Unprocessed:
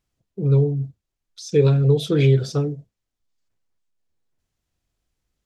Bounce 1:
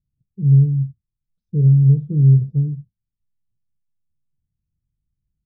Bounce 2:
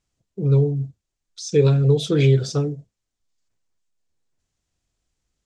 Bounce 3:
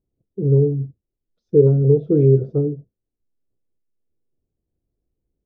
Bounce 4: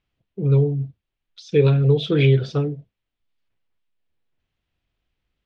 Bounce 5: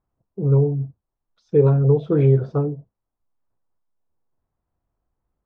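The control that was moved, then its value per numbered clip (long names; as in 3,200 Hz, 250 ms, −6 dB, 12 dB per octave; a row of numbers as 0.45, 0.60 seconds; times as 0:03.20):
low-pass with resonance, frequency: 150, 7,600, 410, 3,000, 1,000 Hertz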